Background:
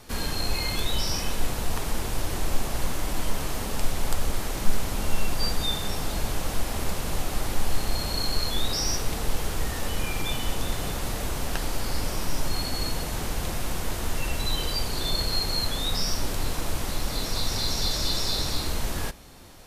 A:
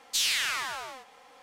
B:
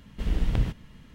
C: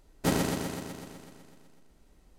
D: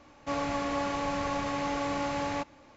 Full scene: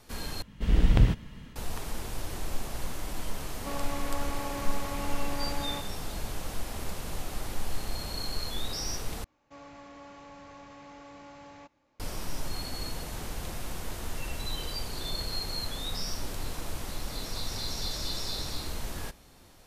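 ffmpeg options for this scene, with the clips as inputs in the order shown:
ffmpeg -i bed.wav -i cue0.wav -i cue1.wav -i cue2.wav -i cue3.wav -filter_complex "[4:a]asplit=2[link_01][link_02];[0:a]volume=-7.5dB[link_03];[2:a]dynaudnorm=framelen=180:gausssize=3:maxgain=6dB[link_04];[link_02]asoftclip=type=tanh:threshold=-24dB[link_05];[link_03]asplit=3[link_06][link_07][link_08];[link_06]atrim=end=0.424[link_09];[link_04]atrim=end=1.14,asetpts=PTS-STARTPTS,volume=-1.5dB[link_10];[link_07]atrim=start=1.556:end=9.244[link_11];[link_05]atrim=end=2.76,asetpts=PTS-STARTPTS,volume=-16dB[link_12];[link_08]atrim=start=11.996[link_13];[link_01]atrim=end=2.76,asetpts=PTS-STARTPTS,volume=-6dB,afade=type=in:duration=0.004:curve=hsin,afade=type=out:start_time=2.756:duration=0.004:curve=hsin,adelay=3380[link_14];[link_09][link_10]acrossfade=duration=0.004:curve1=hsin:curve2=hsin[link_15];[link_15][link_11]acrossfade=duration=0.004:curve1=hsin:curve2=hsin[link_16];[link_16][link_12]acrossfade=duration=0.004:curve1=hsin:curve2=hsin[link_17];[link_17][link_13]acrossfade=duration=0.004:curve1=hsin:curve2=hsin[link_18];[link_18][link_14]amix=inputs=2:normalize=0" out.wav

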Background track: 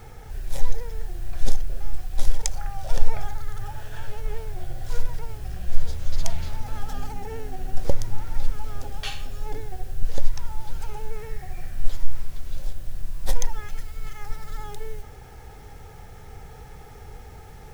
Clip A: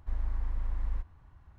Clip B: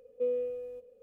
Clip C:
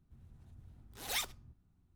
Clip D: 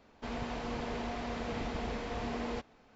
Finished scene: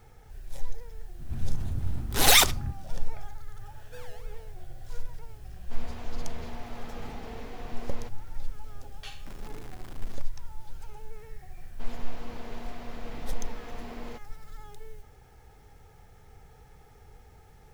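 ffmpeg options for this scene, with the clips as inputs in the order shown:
ffmpeg -i bed.wav -i cue0.wav -i cue1.wav -i cue2.wav -i cue3.wav -filter_complex "[4:a]asplit=2[link_01][link_02];[0:a]volume=-11dB[link_03];[3:a]alimiter=level_in=29dB:limit=-1dB:release=50:level=0:latency=1[link_04];[2:a]acrusher=samples=30:mix=1:aa=0.000001:lfo=1:lforange=18:lforate=3.1[link_05];[1:a]aeval=exprs='(mod(50.1*val(0)+1,2)-1)/50.1':channel_layout=same[link_06];[link_04]atrim=end=1.95,asetpts=PTS-STARTPTS,volume=-5.5dB,afade=type=in:duration=0.004:curve=hsin,afade=type=out:start_time=1.946:duration=0.004:curve=hsin,adelay=1190[link_07];[link_05]atrim=end=1.02,asetpts=PTS-STARTPTS,volume=-17.5dB,afade=type=in:duration=0.004:curve=hsin,afade=type=out:start_time=1.016:duration=0.004:curve=hsin,adelay=3720[link_08];[link_01]atrim=end=2.95,asetpts=PTS-STARTPTS,volume=-6dB,afade=type=in:duration=0.004:curve=hsin,afade=type=out:start_time=2.946:duration=0.004:curve=hsin,adelay=5480[link_09];[link_06]atrim=end=1.58,asetpts=PTS-STARTPTS,volume=-9dB,afade=type=in:duration=0.004:curve=hsin,afade=type=out:start_time=1.576:duration=0.004:curve=hsin,adelay=9190[link_10];[link_02]atrim=end=2.95,asetpts=PTS-STARTPTS,volume=-5.5dB,afade=type=in:duration=0.004:curve=hsin,afade=type=out:start_time=2.946:duration=0.004:curve=hsin,adelay=11570[link_11];[link_03][link_07][link_08][link_09][link_10][link_11]amix=inputs=6:normalize=0" out.wav

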